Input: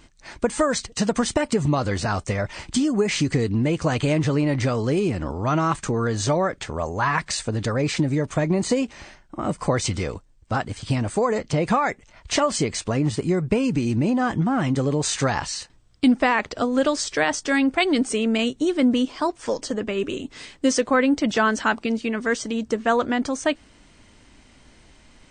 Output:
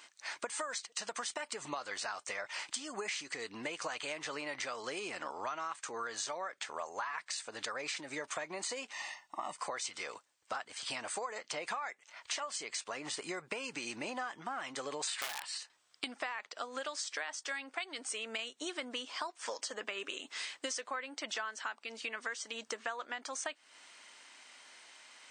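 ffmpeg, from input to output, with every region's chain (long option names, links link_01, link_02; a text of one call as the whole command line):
ffmpeg -i in.wav -filter_complex "[0:a]asettb=1/sr,asplit=3[link_01][link_02][link_03];[link_01]atrim=end=8.934[link_04];[link_02]atrim=start=8.93:end=9.56,asetpts=PTS-STARTPTS,afade=type=in:duration=0.004:curve=qsin,afade=type=out:start_time=0.626:duration=0.004:curve=qsin,asuperstop=centerf=1600:order=12:qfactor=5.7,aecho=1:1:1.1:0.69,atrim=end_sample=27783[link_05];[link_03]atrim=start=9.556[link_06];[link_04][link_05]acrossfade=duration=0.004:curve1=hsin:curve2=qsin[link_07];[link_07][link_06]acrossfade=duration=0.004:curve1=qsin:curve2=hsin,asettb=1/sr,asplit=3[link_08][link_09][link_10];[link_08]atrim=end=15.074[link_11];[link_09]atrim=start=15.07:end=15.58,asetpts=PTS-STARTPTS,afade=type=in:duration=0.004:curve=qsin,afade=type=out:start_time=0.506:duration=0.004:curve=qsin,equalizer=frequency=6200:width_type=o:width=0.35:gain=-15,acontrast=86,aeval=exprs='(mod(3.16*val(0)+1,2)-1)/3.16':channel_layout=same[link_12];[link_10]atrim=start=15.576[link_13];[link_11][link_12]acrossfade=duration=0.004:curve1=hsin:curve2=qsin[link_14];[link_14][link_13]acrossfade=duration=0.004:curve1=qsin:curve2=hsin,highpass=940,acompressor=threshold=-37dB:ratio=12,volume=1dB" out.wav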